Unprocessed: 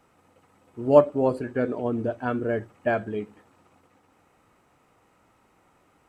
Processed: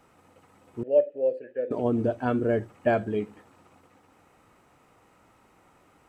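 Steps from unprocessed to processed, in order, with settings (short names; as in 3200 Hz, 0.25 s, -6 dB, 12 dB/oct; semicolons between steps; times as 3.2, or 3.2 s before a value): dynamic EQ 1500 Hz, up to -5 dB, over -38 dBFS, Q 0.9; 0.83–1.71 vowel filter e; gain +2.5 dB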